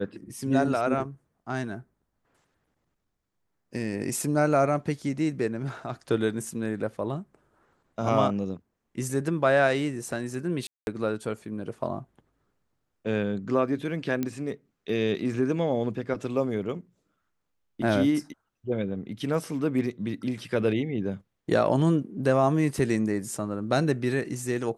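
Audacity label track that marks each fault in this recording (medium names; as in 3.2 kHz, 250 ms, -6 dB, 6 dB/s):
10.670000	10.870000	dropout 201 ms
14.230000	14.230000	pop -15 dBFS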